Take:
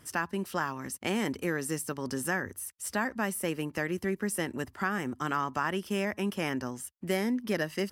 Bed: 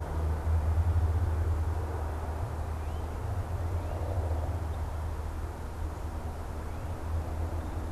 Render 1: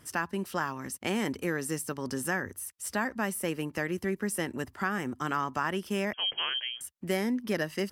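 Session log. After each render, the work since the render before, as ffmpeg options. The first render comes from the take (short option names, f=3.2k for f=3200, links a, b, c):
-filter_complex "[0:a]asettb=1/sr,asplit=3[a][b][c];[a]atrim=end=6.134[d];[b]atrim=start=6.13:end=6.81,asetpts=PTS-STARTPTS,afade=t=in:d=0.004:c=qsin,afade=t=out:st=0.676:d=0.004:c=qsin,lowpass=f=2.9k:t=q:w=0.5098,lowpass=f=2.9k:t=q:w=0.6013,lowpass=f=2.9k:t=q:w=0.9,lowpass=f=2.9k:t=q:w=2.563,afreqshift=-3400[e];[c]atrim=start=6.806[f];[d][e]acrossfade=d=0.004:c1=hsin:c2=qsin[g];[g][f]acrossfade=d=0.004:c1=qsin:c2=hsin"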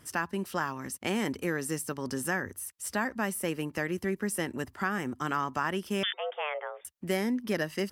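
-filter_complex "[0:a]asettb=1/sr,asplit=3[a][b][c];[a]atrim=end=6.034[d];[b]atrim=start=6.03:end=6.85,asetpts=PTS-STARTPTS,afade=t=in:d=0.004:c=qsin,afade=t=out:st=0.816:d=0.004:c=qsin,lowpass=f=3.1k:t=q:w=0.5098,lowpass=f=3.1k:t=q:w=0.6013,lowpass=f=3.1k:t=q:w=0.9,lowpass=f=3.1k:t=q:w=2.563,afreqshift=-3700[e];[c]atrim=start=6.846[f];[d][e]acrossfade=d=0.004:c1=hsin:c2=qsin[g];[g][f]acrossfade=d=0.004:c1=qsin:c2=hsin"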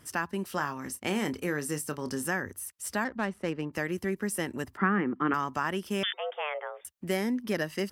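-filter_complex "[0:a]asettb=1/sr,asplit=3[a][b][c];[a]atrim=end=0.474[d];[b]atrim=start=0.47:end=2.25,asetpts=PTS-STARTPTS,afade=t=in:d=0.004:c=qsin,afade=t=out:st=1.776:d=0.004:c=qsin,asplit=2[e][f];[f]adelay=27,volume=-11.5dB[g];[e][g]amix=inputs=2:normalize=0,atrim=end_sample=78498[h];[c]atrim=start=2.246[i];[d][h]acrossfade=d=0.004:c1=hsin:c2=qsin[j];[j][i]acrossfade=d=0.004:c1=qsin:c2=hsin,asettb=1/sr,asplit=3[k][l][m];[k]atrim=end=3.044[n];[l]atrim=start=3.04:end=3.73,asetpts=PTS-STARTPTS,afade=t=in:d=0.004:c=qsin,afade=t=out:st=0.686:d=0.004:c=qsin,adynamicsmooth=sensitivity=5:basefreq=1.8k[o];[m]atrim=start=3.726[p];[n][o]acrossfade=d=0.004:c1=hsin:c2=qsin[q];[q][p]acrossfade=d=0.004:c1=qsin:c2=hsin,asettb=1/sr,asplit=3[r][s][t];[r]atrim=end=4.774[u];[s]atrim=start=4.77:end=5.34,asetpts=PTS-STARTPTS,afade=t=in:d=0.004:c=qsin,afade=t=out:st=0.566:d=0.004:c=qsin,highpass=150,equalizer=f=190:t=q:w=4:g=10,equalizer=f=310:t=q:w=4:g=9,equalizer=f=440:t=q:w=4:g=6,equalizer=f=660:t=q:w=4:g=-4,equalizer=f=1.2k:t=q:w=4:g=6,equalizer=f=1.9k:t=q:w=4:g=4,lowpass=f=2.7k:w=0.5412,lowpass=f=2.7k:w=1.3066[v];[t]atrim=start=5.336[w];[u][v]acrossfade=d=0.004:c1=hsin:c2=qsin[x];[x][w]acrossfade=d=0.004:c1=qsin:c2=hsin"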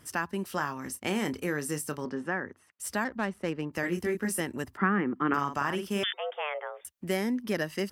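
-filter_complex "[0:a]asettb=1/sr,asplit=3[a][b][c];[a]atrim=end=2.054[d];[b]atrim=start=2.05:end=2.8,asetpts=PTS-STARTPTS,afade=t=in:d=0.004:c=qsin,afade=t=out:st=0.746:d=0.004:c=qsin,highpass=170,lowpass=2.2k[e];[c]atrim=start=2.796[f];[d][e]acrossfade=d=0.004:c1=hsin:c2=qsin[g];[g][f]acrossfade=d=0.004:c1=qsin:c2=hsin,asettb=1/sr,asplit=3[h][i][j];[h]atrim=end=3.814[k];[i]atrim=start=3.81:end=4.41,asetpts=PTS-STARTPTS,afade=t=in:d=0.004:c=qsin,afade=t=out:st=0.596:d=0.004:c=qsin,asplit=2[l][m];[m]adelay=23,volume=-3dB[n];[l][n]amix=inputs=2:normalize=0,atrim=end_sample=26460[o];[j]atrim=start=4.406[p];[k][o]acrossfade=d=0.004:c1=hsin:c2=qsin[q];[q][p]acrossfade=d=0.004:c1=qsin:c2=hsin,asettb=1/sr,asplit=3[r][s][t];[r]atrim=end=5.274[u];[s]atrim=start=5.27:end=6.04,asetpts=PTS-STARTPTS,afade=t=in:d=0.004:c=qsin,afade=t=out:st=0.766:d=0.004:c=qsin,asplit=2[v][w];[w]adelay=49,volume=-7dB[x];[v][x]amix=inputs=2:normalize=0,atrim=end_sample=33957[y];[t]atrim=start=6.036[z];[u][y]acrossfade=d=0.004:c1=hsin:c2=qsin[aa];[aa][z]acrossfade=d=0.004:c1=qsin:c2=hsin"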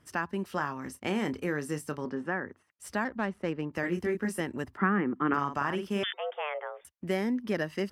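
-af "lowpass=f=3k:p=1,agate=range=-6dB:threshold=-54dB:ratio=16:detection=peak"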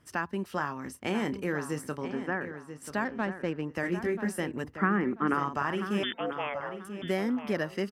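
-filter_complex "[0:a]asplit=2[a][b];[b]adelay=986,lowpass=f=3.5k:p=1,volume=-10dB,asplit=2[c][d];[d]adelay=986,lowpass=f=3.5k:p=1,volume=0.29,asplit=2[e][f];[f]adelay=986,lowpass=f=3.5k:p=1,volume=0.29[g];[a][c][e][g]amix=inputs=4:normalize=0"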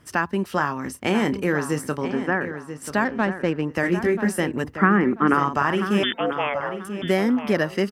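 -af "volume=9dB"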